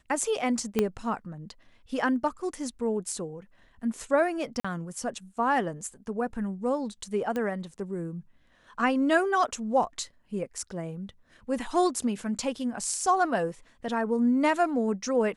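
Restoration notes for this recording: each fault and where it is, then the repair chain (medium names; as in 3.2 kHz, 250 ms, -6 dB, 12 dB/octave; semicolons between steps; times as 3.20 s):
0.79 s: pop -11 dBFS
4.60–4.64 s: dropout 45 ms
7.36 s: pop -19 dBFS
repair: de-click; interpolate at 4.60 s, 45 ms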